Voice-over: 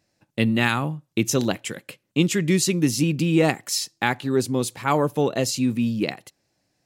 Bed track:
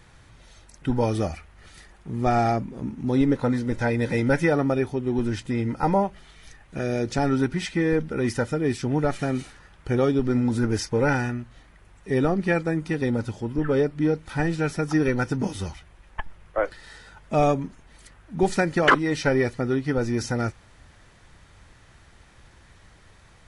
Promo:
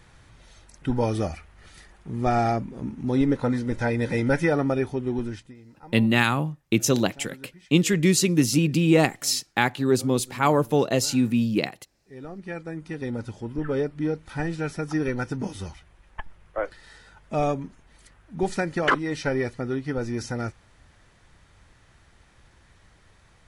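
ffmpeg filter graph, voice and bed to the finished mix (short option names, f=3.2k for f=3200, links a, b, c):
-filter_complex "[0:a]adelay=5550,volume=0.5dB[a];[1:a]volume=18.5dB,afade=t=out:st=5.05:d=0.5:silence=0.0749894,afade=t=in:st=12.08:d=1.35:silence=0.105925[b];[a][b]amix=inputs=2:normalize=0"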